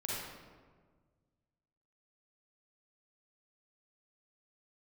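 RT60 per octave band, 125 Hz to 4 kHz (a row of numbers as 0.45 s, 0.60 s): 2.3 s, 1.9 s, 1.7 s, 1.4 s, 1.2 s, 0.85 s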